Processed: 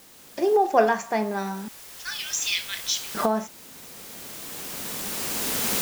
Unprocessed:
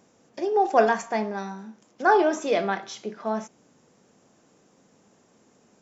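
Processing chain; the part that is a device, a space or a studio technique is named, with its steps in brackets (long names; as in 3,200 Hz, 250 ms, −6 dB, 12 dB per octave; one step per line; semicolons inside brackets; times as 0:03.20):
0:01.68–0:03.15: inverse Chebyshev high-pass filter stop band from 460 Hz, stop band 80 dB
cheap recorder with automatic gain (white noise bed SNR 22 dB; camcorder AGC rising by 10 dB per second)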